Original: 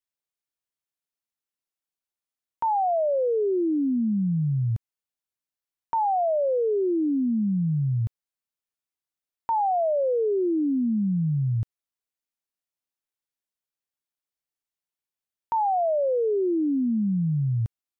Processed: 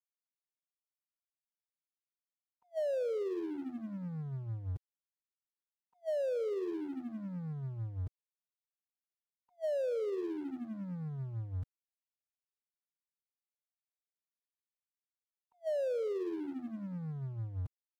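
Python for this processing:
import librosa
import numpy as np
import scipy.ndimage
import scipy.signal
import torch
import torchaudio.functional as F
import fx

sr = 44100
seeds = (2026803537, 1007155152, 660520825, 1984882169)

y = fx.pitch_keep_formants(x, sr, semitones=-4.0)
y = np.sign(y) * np.maximum(np.abs(y) - 10.0 ** (-42.0 / 20.0), 0.0)
y = fx.attack_slew(y, sr, db_per_s=540.0)
y = F.gain(torch.from_numpy(y), -8.0).numpy()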